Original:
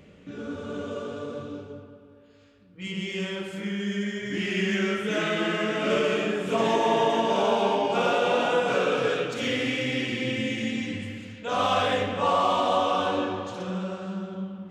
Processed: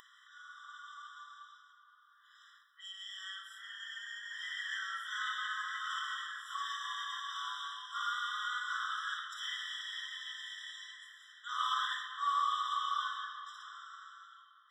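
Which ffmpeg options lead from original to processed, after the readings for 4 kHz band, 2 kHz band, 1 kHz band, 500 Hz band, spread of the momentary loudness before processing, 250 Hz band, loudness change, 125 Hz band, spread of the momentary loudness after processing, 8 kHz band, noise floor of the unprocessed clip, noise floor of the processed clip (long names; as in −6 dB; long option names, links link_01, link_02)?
−7.5 dB, −8.5 dB, −10.5 dB, below −40 dB, 13 LU, below −40 dB, −12.0 dB, below −40 dB, 17 LU, −9.0 dB, −52 dBFS, −64 dBFS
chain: -af "acompressor=mode=upward:threshold=-33dB:ratio=2.5,afftfilt=real='re*eq(mod(floor(b*sr/1024/1000),2),1)':imag='im*eq(mod(floor(b*sr/1024/1000),2),1)':win_size=1024:overlap=0.75,volume=-5.5dB"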